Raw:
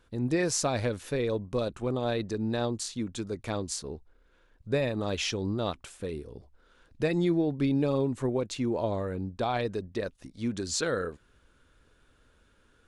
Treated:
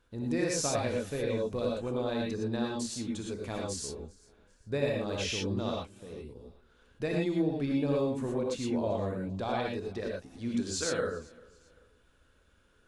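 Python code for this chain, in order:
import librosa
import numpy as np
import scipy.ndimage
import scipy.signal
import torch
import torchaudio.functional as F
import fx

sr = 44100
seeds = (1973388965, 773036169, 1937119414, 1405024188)

p1 = fx.level_steps(x, sr, step_db=20, at=(5.81, 6.29))
p2 = p1 + fx.echo_feedback(p1, sr, ms=392, feedback_pct=38, wet_db=-24, dry=0)
p3 = fx.rev_gated(p2, sr, seeds[0], gate_ms=140, shape='rising', drr_db=-1.5)
y = F.gain(torch.from_numpy(p3), -6.0).numpy()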